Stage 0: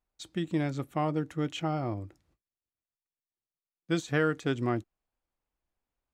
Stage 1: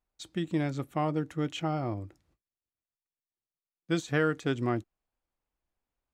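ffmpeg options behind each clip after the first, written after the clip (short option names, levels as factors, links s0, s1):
-af anull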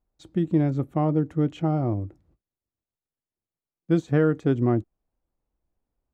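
-af "tiltshelf=f=1100:g=9.5"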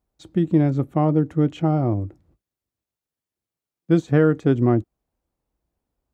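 -af "highpass=43,volume=1.58"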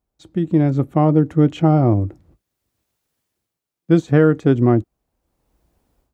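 -af "dynaudnorm=f=400:g=3:m=6.31,volume=0.891"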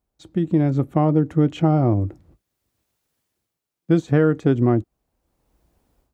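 -af "acompressor=threshold=0.126:ratio=1.5"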